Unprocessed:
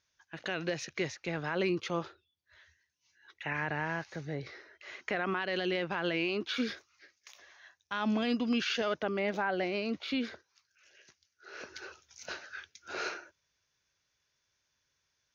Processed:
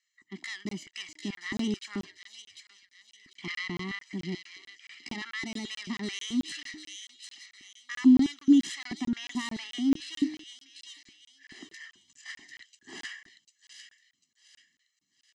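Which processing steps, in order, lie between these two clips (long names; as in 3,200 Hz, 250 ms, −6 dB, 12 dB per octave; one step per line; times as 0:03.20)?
phase distortion by the signal itself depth 0.18 ms
low-pass filter 6,400 Hz 24 dB per octave
comb filter 1.2 ms, depth 99%
hum removal 259.3 Hz, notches 3
pitch shifter +3 semitones
auto-filter high-pass square 2.3 Hz 260–1,600 Hz
drawn EQ curve 370 Hz 0 dB, 520 Hz −20 dB, 3,500 Hz −8 dB
delay with a high-pass on its return 746 ms, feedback 37%, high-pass 3,300 Hz, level −3.5 dB
regular buffer underruns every 0.22 s, samples 1,024, zero, from 0:00.69
level +3 dB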